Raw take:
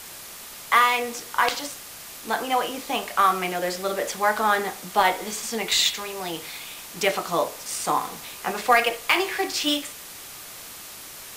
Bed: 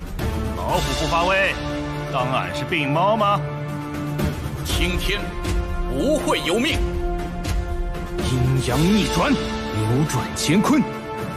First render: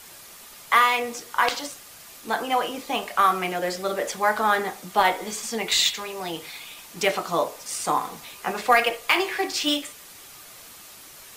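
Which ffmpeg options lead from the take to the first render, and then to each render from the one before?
-af "afftdn=nr=6:nf=-41"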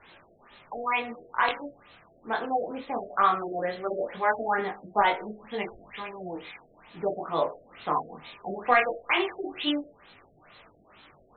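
-af "flanger=delay=19.5:depth=6.7:speed=0.19,afftfilt=real='re*lt(b*sr/1024,700*pow(4300/700,0.5+0.5*sin(2*PI*2.2*pts/sr)))':imag='im*lt(b*sr/1024,700*pow(4300/700,0.5+0.5*sin(2*PI*2.2*pts/sr)))':win_size=1024:overlap=0.75"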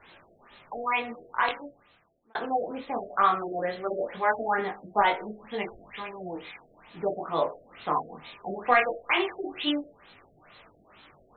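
-filter_complex "[0:a]asplit=2[a][b];[a]atrim=end=2.35,asetpts=PTS-STARTPTS,afade=t=out:st=1.31:d=1.04[c];[b]atrim=start=2.35,asetpts=PTS-STARTPTS,afade=t=in:d=0.004:c=hsin[d];[c][d]concat=n=2:v=0:a=1"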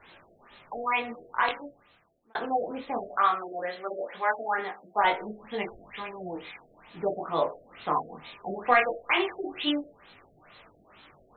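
-filter_complex "[0:a]asettb=1/sr,asplit=3[a][b][c];[a]atrim=end=3.184[d];[b]atrim=start=3.18:end=5.04,asetpts=PTS-STARTPTS,afade=t=in:d=0.004:c=qsin,afade=t=out:st=1.856:d=0.004:c=qsin,highpass=f=630:p=1[e];[c]atrim=start=5.036[f];[d][e]acrossfade=d=0.004:c1=hsin:c2=qsin[g];[g][f]acrossfade=d=0.004:c1=qsin:c2=hsin"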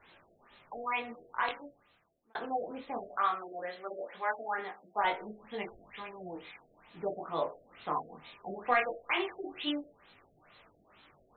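-af "volume=-6.5dB"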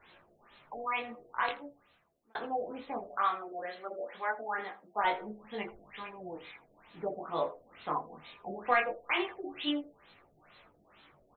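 -filter_complex "[0:a]asplit=2[a][b];[b]adelay=14,volume=-10.5dB[c];[a][c]amix=inputs=2:normalize=0,aecho=1:1:81:0.075"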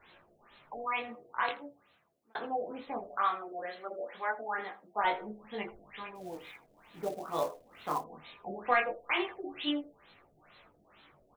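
-filter_complex "[0:a]asettb=1/sr,asplit=3[a][b][c];[a]atrim=end=1.084[d];[b]atrim=start=1.08:end=2.87,asetpts=PTS-STARTPTS,afade=t=in:d=0.004:c=qsin,afade=t=out:st=1.786:d=0.004:c=qsin,highpass=85[e];[c]atrim=start=2.866[f];[d][e]acrossfade=d=0.004:c1=hsin:c2=qsin[g];[g][f]acrossfade=d=0.004:c1=qsin:c2=hsin,asettb=1/sr,asplit=3[h][i][j];[h]atrim=end=6.154[k];[i]atrim=start=6.15:end=8.04,asetpts=PTS-STARTPTS,afade=t=in:d=0.004:c=qsin,afade=t=out:st=1.886:d=0.004:c=qsin,acrusher=bits=4:mode=log:mix=0:aa=0.000001[l];[j]atrim=start=8.036[m];[k][l]acrossfade=d=0.004:c1=hsin:c2=qsin[n];[n][m]acrossfade=d=0.004:c1=qsin:c2=hsin"

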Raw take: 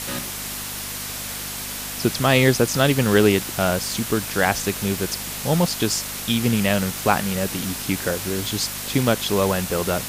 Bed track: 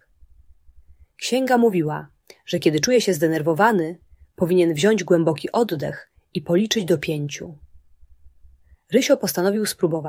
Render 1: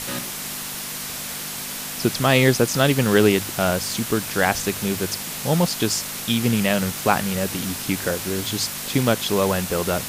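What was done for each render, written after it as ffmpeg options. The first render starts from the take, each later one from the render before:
-af "bandreject=f=50:t=h:w=4,bandreject=f=100:t=h:w=4"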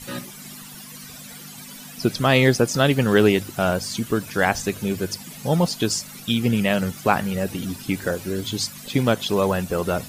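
-af "afftdn=nr=15:nf=-31"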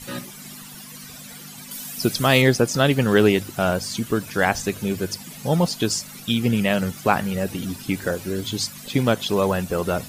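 -filter_complex "[0:a]asettb=1/sr,asplit=3[a][b][c];[a]atrim=end=1.714[d];[b]atrim=start=1.71:end=2.42,asetpts=PTS-STARTPTS,afade=t=in:d=0.004:c=qsin,afade=t=out:st=0.706:d=0.004:c=qsin,aemphasis=mode=production:type=cd[e];[c]atrim=start=2.416[f];[d][e]acrossfade=d=0.004:c1=hsin:c2=qsin[g];[g][f]acrossfade=d=0.004:c1=qsin:c2=hsin"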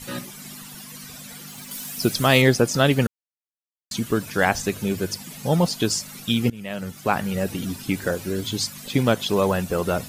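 -filter_complex "[0:a]asettb=1/sr,asplit=3[a][b][c];[a]atrim=end=1.484[d];[b]atrim=start=1.48:end=2.25,asetpts=PTS-STARTPTS,afade=t=in:d=0.004:c=qsin,afade=t=out:st=0.766:d=0.004:c=qsin,acrusher=bits=6:mix=0:aa=0.5[e];[c]atrim=start=2.246[f];[d][e]acrossfade=d=0.004:c1=hsin:c2=qsin[g];[g][f]acrossfade=d=0.004:c1=qsin:c2=hsin,asplit=4[h][i][j][k];[h]atrim=end=3.07,asetpts=PTS-STARTPTS,afade=t=out:st=3.066:d=0.004:c=hsin[l];[i]atrim=start=3.07:end=3.91,asetpts=PTS-STARTPTS,volume=0[m];[j]atrim=start=3.91:end=6.5,asetpts=PTS-STARTPTS,afade=t=in:d=0.004:c=hsin,afade=t=out:st=2.586:d=0.004:c=hsin:silence=0.0707946[n];[k]atrim=start=6.5,asetpts=PTS-STARTPTS,afade=t=in:d=0.88:silence=0.0707946[o];[l][m][n][o]concat=n=4:v=0:a=1"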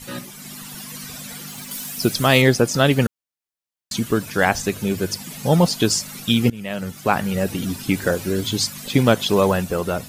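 -af "dynaudnorm=f=100:g=11:m=5dB"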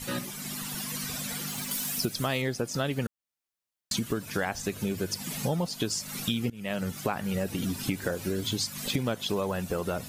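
-af "acompressor=threshold=-27dB:ratio=6"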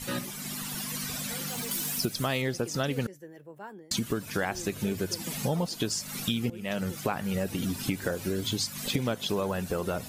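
-filter_complex "[1:a]volume=-27.5dB[a];[0:a][a]amix=inputs=2:normalize=0"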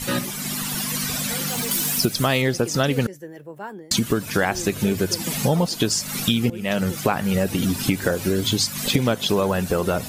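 -af "volume=9dB"

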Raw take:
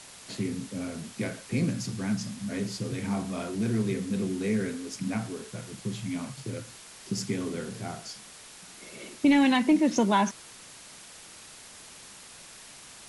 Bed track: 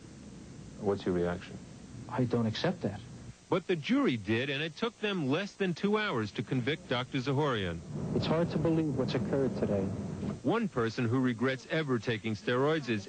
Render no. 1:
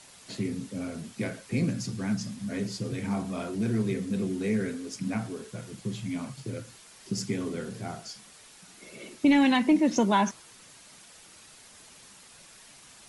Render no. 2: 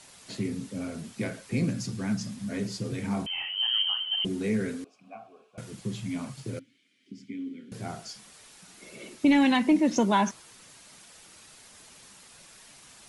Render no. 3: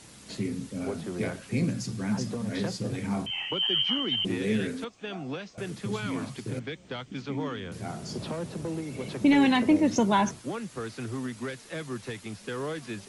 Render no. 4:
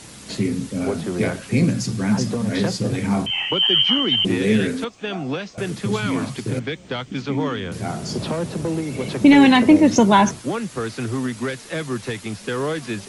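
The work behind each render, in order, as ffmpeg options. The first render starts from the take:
-af "afftdn=nr=6:nf=-49"
-filter_complex "[0:a]asettb=1/sr,asplit=3[a][b][c];[a]atrim=end=3.264[d];[b]atrim=start=3.26:end=4.25,asetpts=PTS-STARTPTS,afade=t=in:d=0.004:c=qsin,afade=t=out:st=0.986:d=0.004:c=qsin,lowpass=f=2.8k:t=q:w=0.5098,lowpass=f=2.8k:t=q:w=0.6013,lowpass=f=2.8k:t=q:w=0.9,lowpass=f=2.8k:t=q:w=2.563,afreqshift=-3300[e];[c]atrim=start=4.246[f];[d][e]acrossfade=d=0.004:c1=hsin:c2=qsin[g];[g][f]acrossfade=d=0.004:c1=qsin:c2=hsin,asettb=1/sr,asplit=3[h][i][j];[h]atrim=end=4.844[k];[i]atrim=start=4.84:end=5.58,asetpts=PTS-STARTPTS,afade=t=in:d=0.004:c=qsin,afade=t=out:st=0.736:d=0.004:c=qsin,asplit=3[l][m][n];[l]bandpass=f=730:t=q:w=8,volume=0dB[o];[m]bandpass=f=1.09k:t=q:w=8,volume=-6dB[p];[n]bandpass=f=2.44k:t=q:w=8,volume=-9dB[q];[o][p][q]amix=inputs=3:normalize=0[r];[j]atrim=start=5.576[s];[k][r]acrossfade=d=0.004:c1=hsin:c2=qsin[t];[t][s]acrossfade=d=0.004:c1=qsin:c2=hsin,asettb=1/sr,asplit=3[u][v][w];[u]atrim=end=6.594[x];[v]atrim=start=6.59:end=7.72,asetpts=PTS-STARTPTS,afade=t=in:d=0.004:c=qsin,afade=t=out:st=1.126:d=0.004:c=qsin,asplit=3[y][z][aa];[y]bandpass=f=270:t=q:w=8,volume=0dB[ab];[z]bandpass=f=2.29k:t=q:w=8,volume=-6dB[ac];[aa]bandpass=f=3.01k:t=q:w=8,volume=-9dB[ad];[ab][ac][ad]amix=inputs=3:normalize=0[ae];[w]atrim=start=7.716[af];[x][ae]acrossfade=d=0.004:c1=hsin:c2=qsin[ag];[ag][af]acrossfade=d=0.004:c1=qsin:c2=hsin"
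-filter_complex "[1:a]volume=-5dB[a];[0:a][a]amix=inputs=2:normalize=0"
-af "volume=9.5dB"

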